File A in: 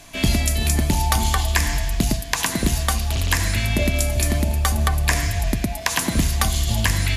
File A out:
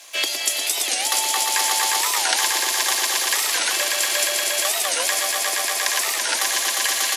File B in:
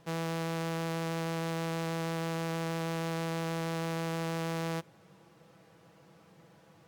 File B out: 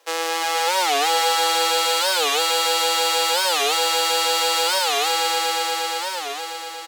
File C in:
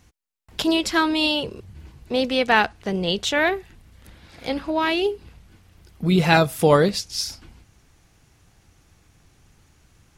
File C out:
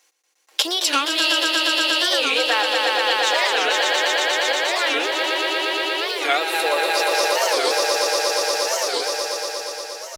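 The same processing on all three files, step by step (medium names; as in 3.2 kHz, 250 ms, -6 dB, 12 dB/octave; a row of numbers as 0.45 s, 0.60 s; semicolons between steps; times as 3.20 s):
companding laws mixed up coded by A; treble shelf 9.4 kHz -8 dB; on a send: echo with a slow build-up 118 ms, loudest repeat 5, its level -3 dB; on the sum: compression 3:1, threshold -24 dBFS; steep high-pass 370 Hz 48 dB/octave; treble shelf 2.8 kHz +11.5 dB; comb 3.7 ms, depth 46%; warped record 45 rpm, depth 250 cents; normalise loudness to -19 LUFS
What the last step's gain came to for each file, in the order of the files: +1.5 dB, +10.5 dB, +3.0 dB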